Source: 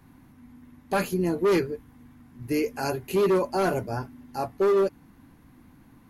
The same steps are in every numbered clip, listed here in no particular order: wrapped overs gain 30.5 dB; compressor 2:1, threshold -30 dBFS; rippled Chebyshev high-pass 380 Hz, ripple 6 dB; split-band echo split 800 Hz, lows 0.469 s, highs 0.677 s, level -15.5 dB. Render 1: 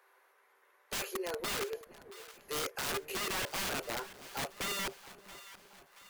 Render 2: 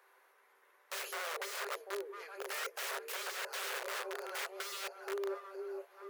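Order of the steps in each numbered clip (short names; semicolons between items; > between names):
rippled Chebyshev high-pass > compressor > wrapped overs > split-band echo; split-band echo > compressor > wrapped overs > rippled Chebyshev high-pass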